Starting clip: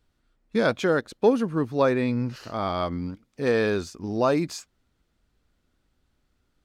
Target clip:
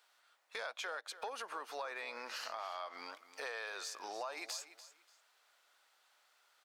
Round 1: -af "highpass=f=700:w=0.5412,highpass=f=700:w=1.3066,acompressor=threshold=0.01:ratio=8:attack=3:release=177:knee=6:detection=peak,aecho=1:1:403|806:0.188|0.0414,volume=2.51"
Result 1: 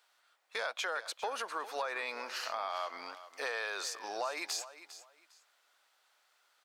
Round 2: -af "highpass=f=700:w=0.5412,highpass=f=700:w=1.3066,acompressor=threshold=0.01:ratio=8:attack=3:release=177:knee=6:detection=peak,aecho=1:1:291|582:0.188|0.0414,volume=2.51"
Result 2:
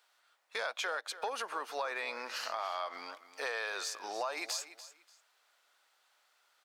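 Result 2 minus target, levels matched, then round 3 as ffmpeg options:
compression: peak gain reduction -6 dB
-af "highpass=f=700:w=0.5412,highpass=f=700:w=1.3066,acompressor=threshold=0.00447:ratio=8:attack=3:release=177:knee=6:detection=peak,aecho=1:1:291|582:0.188|0.0414,volume=2.51"

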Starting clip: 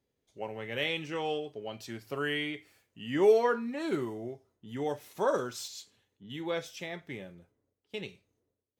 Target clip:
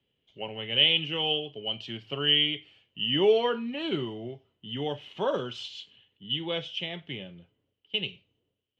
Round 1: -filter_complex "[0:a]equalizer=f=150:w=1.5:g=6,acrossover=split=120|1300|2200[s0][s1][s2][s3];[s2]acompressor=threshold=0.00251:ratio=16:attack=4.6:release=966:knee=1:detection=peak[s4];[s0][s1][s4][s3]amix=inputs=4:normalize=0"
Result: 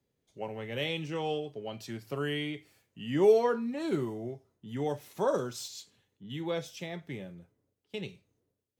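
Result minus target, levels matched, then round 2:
4 kHz band -12.0 dB
-filter_complex "[0:a]lowpass=f=3000:t=q:w=14,equalizer=f=150:w=1.5:g=6,acrossover=split=120|1300|2200[s0][s1][s2][s3];[s2]acompressor=threshold=0.00251:ratio=16:attack=4.6:release=966:knee=1:detection=peak[s4];[s0][s1][s4][s3]amix=inputs=4:normalize=0"

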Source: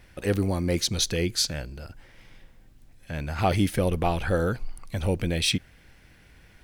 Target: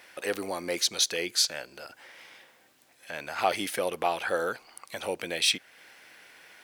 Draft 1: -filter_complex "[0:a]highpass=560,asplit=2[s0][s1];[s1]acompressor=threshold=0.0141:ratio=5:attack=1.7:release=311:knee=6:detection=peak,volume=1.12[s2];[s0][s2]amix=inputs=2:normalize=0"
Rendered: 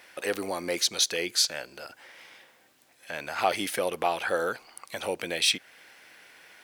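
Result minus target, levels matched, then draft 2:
compression: peak gain reduction -6 dB
-filter_complex "[0:a]highpass=560,asplit=2[s0][s1];[s1]acompressor=threshold=0.00596:ratio=5:attack=1.7:release=311:knee=6:detection=peak,volume=1.12[s2];[s0][s2]amix=inputs=2:normalize=0"

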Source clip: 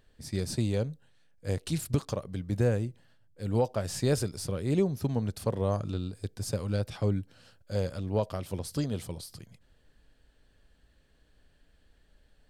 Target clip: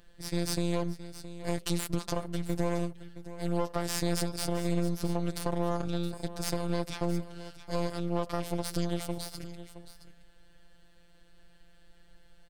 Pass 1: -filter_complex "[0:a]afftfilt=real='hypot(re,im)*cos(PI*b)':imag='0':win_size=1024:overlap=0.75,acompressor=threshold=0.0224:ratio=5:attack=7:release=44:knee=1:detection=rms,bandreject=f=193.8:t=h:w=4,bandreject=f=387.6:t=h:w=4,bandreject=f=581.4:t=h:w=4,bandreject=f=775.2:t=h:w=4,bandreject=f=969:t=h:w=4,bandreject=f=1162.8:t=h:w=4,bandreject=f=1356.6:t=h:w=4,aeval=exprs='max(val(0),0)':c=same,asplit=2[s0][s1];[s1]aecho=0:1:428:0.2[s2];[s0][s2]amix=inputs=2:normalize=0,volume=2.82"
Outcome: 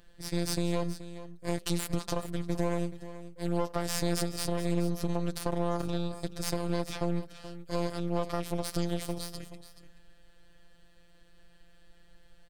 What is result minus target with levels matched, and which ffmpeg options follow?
echo 241 ms early
-filter_complex "[0:a]afftfilt=real='hypot(re,im)*cos(PI*b)':imag='0':win_size=1024:overlap=0.75,acompressor=threshold=0.0224:ratio=5:attack=7:release=44:knee=1:detection=rms,bandreject=f=193.8:t=h:w=4,bandreject=f=387.6:t=h:w=4,bandreject=f=581.4:t=h:w=4,bandreject=f=775.2:t=h:w=4,bandreject=f=969:t=h:w=4,bandreject=f=1162.8:t=h:w=4,bandreject=f=1356.6:t=h:w=4,aeval=exprs='max(val(0),0)':c=same,asplit=2[s0][s1];[s1]aecho=0:1:669:0.2[s2];[s0][s2]amix=inputs=2:normalize=0,volume=2.82"

